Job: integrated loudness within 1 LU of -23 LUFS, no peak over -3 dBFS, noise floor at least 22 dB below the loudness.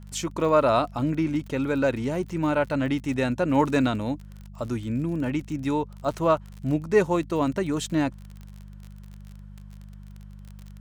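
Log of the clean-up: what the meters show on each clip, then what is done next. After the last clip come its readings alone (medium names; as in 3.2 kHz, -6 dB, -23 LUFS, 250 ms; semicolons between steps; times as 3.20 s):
tick rate 40 per s; hum 50 Hz; highest harmonic 200 Hz; hum level -41 dBFS; loudness -25.5 LUFS; peak level -8.5 dBFS; loudness target -23.0 LUFS
-> de-click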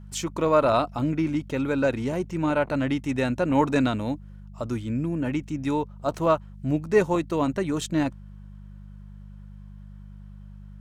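tick rate 1.3 per s; hum 50 Hz; highest harmonic 200 Hz; hum level -41 dBFS
-> de-hum 50 Hz, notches 4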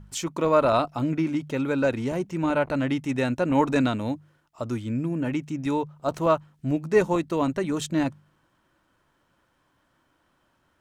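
hum not found; loudness -25.5 LUFS; peak level -8.5 dBFS; loudness target -23.0 LUFS
-> trim +2.5 dB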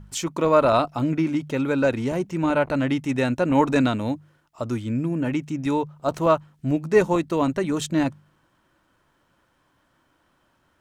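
loudness -23.0 LUFS; peak level -6.0 dBFS; noise floor -67 dBFS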